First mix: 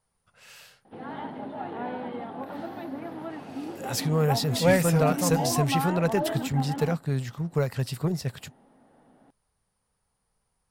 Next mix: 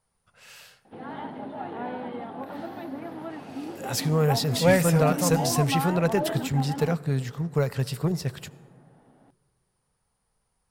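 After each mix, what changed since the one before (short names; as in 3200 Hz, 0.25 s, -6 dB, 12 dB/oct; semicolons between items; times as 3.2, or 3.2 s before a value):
reverb: on, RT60 2.3 s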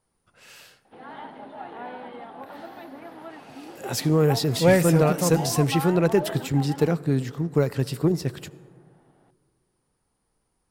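speech: add bell 310 Hz +12.5 dB 0.66 oct; background: add low shelf 360 Hz -11.5 dB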